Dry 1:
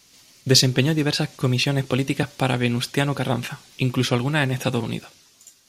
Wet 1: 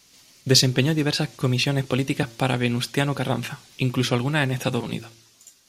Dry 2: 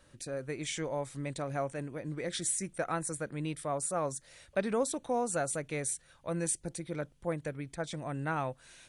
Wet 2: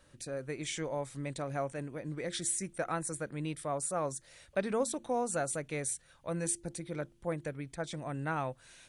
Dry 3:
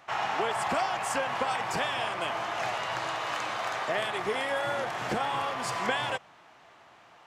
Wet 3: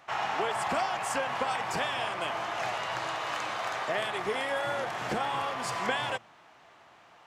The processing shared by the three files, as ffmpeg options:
-af "bandreject=f=113.9:t=h:w=4,bandreject=f=227.8:t=h:w=4,bandreject=f=341.7:t=h:w=4,volume=-1dB"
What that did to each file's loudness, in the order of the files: -1.0, -1.0, -1.0 LU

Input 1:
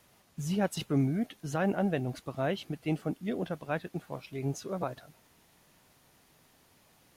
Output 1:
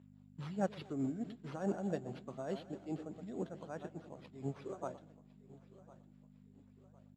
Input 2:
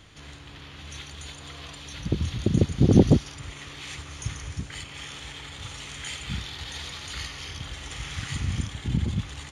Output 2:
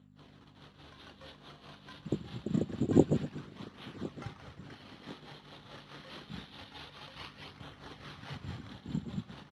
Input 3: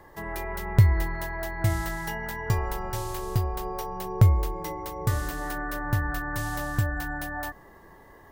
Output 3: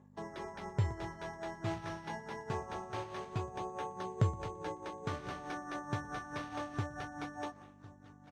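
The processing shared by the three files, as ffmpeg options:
-filter_complex "[0:a]asplit=2[a][b];[b]adelay=120,lowpass=f=1.7k:p=1,volume=-13dB,asplit=2[c][d];[d]adelay=120,lowpass=f=1.7k:p=1,volume=0.45,asplit=2[e][f];[f]adelay=120,lowpass=f=1.7k:p=1,volume=0.45,asplit=2[g][h];[h]adelay=120,lowpass=f=1.7k:p=1,volume=0.45[i];[c][e][g][i]amix=inputs=4:normalize=0[j];[a][j]amix=inputs=2:normalize=0,agate=range=-12dB:threshold=-44dB:ratio=16:detection=peak,equalizer=f=2.3k:t=o:w=0.93:g=-11.5,asplit=2[k][l];[l]aecho=0:1:1056|2112|3168:0.119|0.0499|0.021[m];[k][m]amix=inputs=2:normalize=0,tremolo=f=4.7:d=0.65,aeval=exprs='val(0)+0.00501*(sin(2*PI*50*n/s)+sin(2*PI*2*50*n/s)/2+sin(2*PI*3*50*n/s)/3+sin(2*PI*4*50*n/s)/4+sin(2*PI*5*50*n/s)/5)':c=same,acrusher=samples=6:mix=1:aa=0.000001,flanger=delay=0.1:depth=5.7:regen=-64:speed=0.26:shape=sinusoidal,highpass=170,lowpass=4.6k"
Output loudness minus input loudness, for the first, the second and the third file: -9.0, -9.0, -12.5 LU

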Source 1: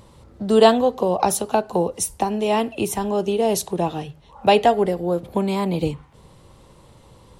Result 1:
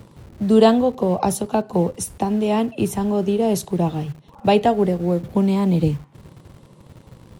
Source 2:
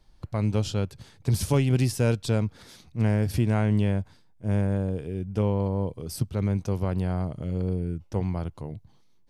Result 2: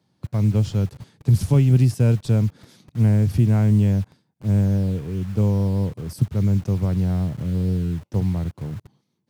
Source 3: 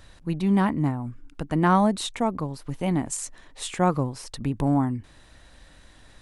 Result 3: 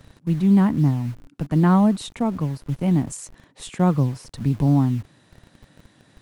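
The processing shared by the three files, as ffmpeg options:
-filter_complex "[0:a]equalizer=f=130:w=0.5:g=12,acrossover=split=120|1200[a][b][c];[a]acrusher=bits=6:mix=0:aa=0.000001[d];[d][b][c]amix=inputs=3:normalize=0,volume=-4dB"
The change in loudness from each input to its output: +0.5, +6.0, +4.5 LU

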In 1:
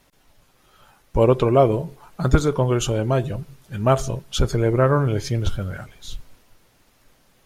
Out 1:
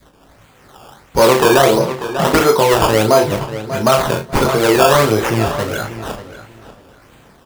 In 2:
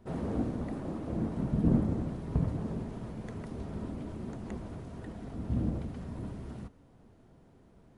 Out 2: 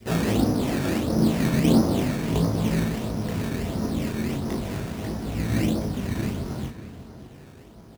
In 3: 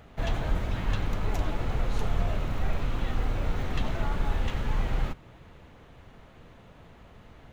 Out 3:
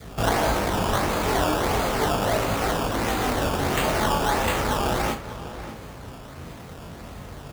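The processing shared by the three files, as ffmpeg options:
-filter_complex "[0:a]acrossover=split=220|910[a][b][c];[a]acompressor=threshold=-37dB:ratio=6[d];[b]asoftclip=type=tanh:threshold=-20.5dB[e];[d][e][c]amix=inputs=3:normalize=0,flanger=delay=18:depth=5.1:speed=0.37,highpass=45,acrusher=samples=15:mix=1:aa=0.000001:lfo=1:lforange=15:lforate=1.5,asplit=2[f][g];[g]adelay=590,lowpass=f=4.1k:p=1,volume=-13dB,asplit=2[h][i];[i]adelay=590,lowpass=f=4.1k:p=1,volume=0.22,asplit=2[j][k];[k]adelay=590,lowpass=f=4.1k:p=1,volume=0.22[l];[h][j][l]amix=inputs=3:normalize=0[m];[f][m]amix=inputs=2:normalize=0,adynamicequalizer=threshold=0.00708:dfrequency=870:dqfactor=1.3:tfrequency=870:tqfactor=1.3:attack=5:release=100:ratio=0.375:range=2:mode=boostabove:tftype=bell,asplit=2[n][o];[o]adelay=36,volume=-8.5dB[p];[n][p]amix=inputs=2:normalize=0,alimiter=level_in=16dB:limit=-1dB:release=50:level=0:latency=1,volume=-1dB"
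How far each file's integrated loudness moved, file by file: +7.0, +10.0, +8.0 LU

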